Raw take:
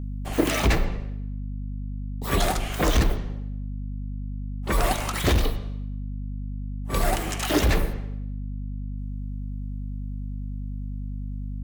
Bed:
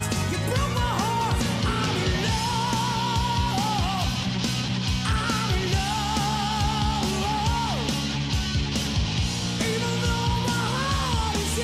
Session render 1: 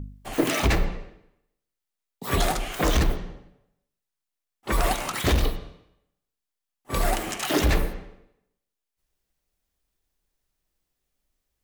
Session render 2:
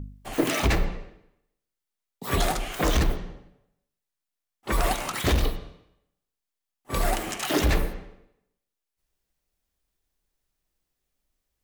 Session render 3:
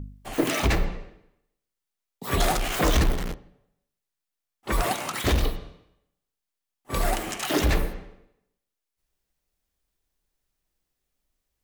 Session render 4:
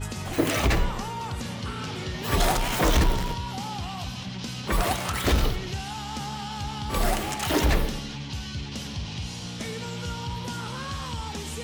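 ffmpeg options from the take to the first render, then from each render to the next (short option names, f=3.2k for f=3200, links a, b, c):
-af "bandreject=f=50:t=h:w=4,bandreject=f=100:t=h:w=4,bandreject=f=150:t=h:w=4,bandreject=f=200:t=h:w=4,bandreject=f=250:t=h:w=4,bandreject=f=300:t=h:w=4,bandreject=f=350:t=h:w=4,bandreject=f=400:t=h:w=4,bandreject=f=450:t=h:w=4,bandreject=f=500:t=h:w=4,bandreject=f=550:t=h:w=4,bandreject=f=600:t=h:w=4"
-af "volume=-1dB"
-filter_complex "[0:a]asettb=1/sr,asplit=3[a][b][c];[a]atrim=end=2.404[d];[b]atrim=start=2.4:end=3.34,asetpts=PTS-STARTPTS,afade=t=in:d=0.004:c=qsin,afade=t=out:st=0.936:d=0.004:c=qsin,aeval=exprs='val(0)+0.5*0.0447*sgn(val(0))':c=same[e];[c]atrim=start=3.336[f];[d][e]acrossfade=d=0.004:c1=hsin:c2=qsin[g];[g][f]acrossfade=d=0.004:c1=qsin:c2=hsin,asettb=1/sr,asplit=3[h][i][j];[h]atrim=end=4.834[k];[i]atrim=start=4.83:end=5.25,asetpts=PTS-STARTPTS,afade=t=in:d=0.004:c=qsin,afade=t=out:st=0.416:d=0.004:c=qsin,highpass=f=91:w=0.5412,highpass=f=91:w=1.3066[l];[j]atrim=start=5.246[m];[k][l]acrossfade=d=0.004:c1=hsin:c2=qsin[n];[n][m]acrossfade=d=0.004:c1=qsin:c2=hsin"
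-filter_complex "[1:a]volume=-8.5dB[a];[0:a][a]amix=inputs=2:normalize=0"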